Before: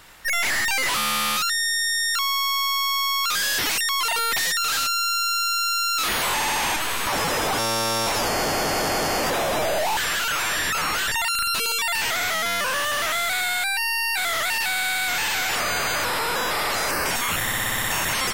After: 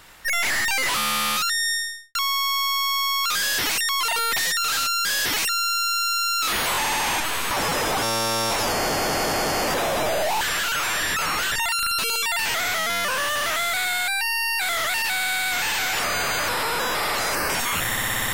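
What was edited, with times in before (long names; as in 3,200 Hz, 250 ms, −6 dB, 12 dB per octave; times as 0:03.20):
0:01.71–0:02.15: fade out and dull
0:03.38–0:03.82: duplicate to 0:05.05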